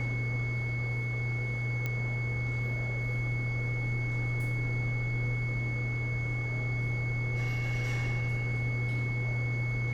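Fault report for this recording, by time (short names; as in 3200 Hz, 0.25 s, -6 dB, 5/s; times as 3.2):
tone 2200 Hz -36 dBFS
1.86 pop -20 dBFS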